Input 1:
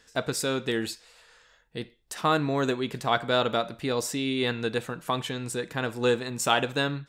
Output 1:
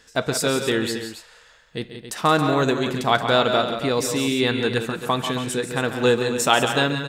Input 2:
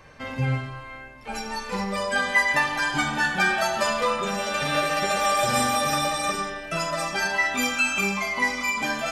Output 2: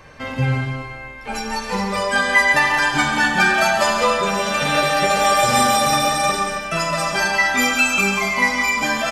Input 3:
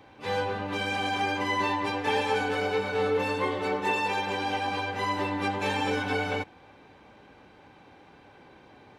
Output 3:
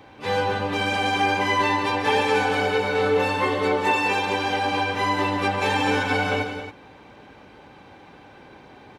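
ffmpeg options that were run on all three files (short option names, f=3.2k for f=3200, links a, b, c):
-af "aecho=1:1:139.9|174.9|274.1:0.282|0.316|0.282,volume=5.5dB"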